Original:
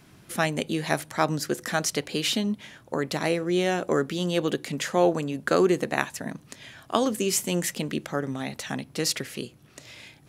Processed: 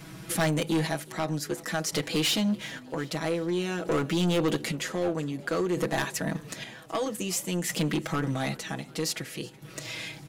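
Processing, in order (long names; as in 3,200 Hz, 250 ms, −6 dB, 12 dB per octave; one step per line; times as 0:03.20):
square-wave tremolo 0.52 Hz, depth 65%, duty 45%
in parallel at +0.5 dB: downward compressor, threshold −40 dBFS, peak gain reduction 20.5 dB
on the sum: hard clipping −19.5 dBFS, distortion −13 dB
comb filter 6.2 ms, depth 98%
soft clipping −20.5 dBFS, distortion −13 dB
on a send: echo with shifted repeats 372 ms, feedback 62%, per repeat +47 Hz, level −23 dB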